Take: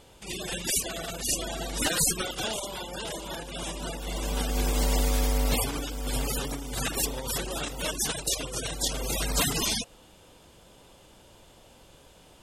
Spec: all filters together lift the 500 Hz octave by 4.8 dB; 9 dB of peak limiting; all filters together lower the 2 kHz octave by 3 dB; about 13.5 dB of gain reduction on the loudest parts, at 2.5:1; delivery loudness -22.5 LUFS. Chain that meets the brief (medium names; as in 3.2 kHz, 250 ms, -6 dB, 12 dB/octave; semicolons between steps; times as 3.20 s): peaking EQ 500 Hz +6 dB; peaking EQ 2 kHz -4.5 dB; compression 2.5:1, threshold -41 dBFS; trim +19 dB; peak limiter -12 dBFS